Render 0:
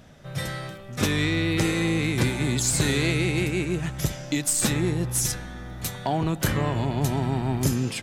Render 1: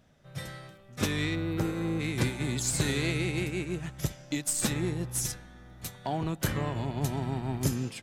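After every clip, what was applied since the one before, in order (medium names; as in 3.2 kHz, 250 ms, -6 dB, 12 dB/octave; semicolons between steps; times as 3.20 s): time-frequency box 1.35–2.00 s, 1.7–12 kHz -10 dB; upward expansion 1.5:1, over -37 dBFS; trim -4 dB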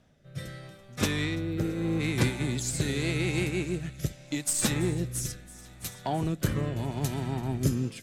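feedback echo behind a high-pass 334 ms, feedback 73%, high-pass 2.1 kHz, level -19 dB; rotary cabinet horn 0.8 Hz; trim +3 dB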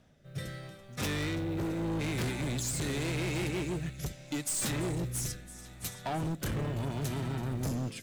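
overload inside the chain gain 30 dB; short-mantissa float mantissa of 4-bit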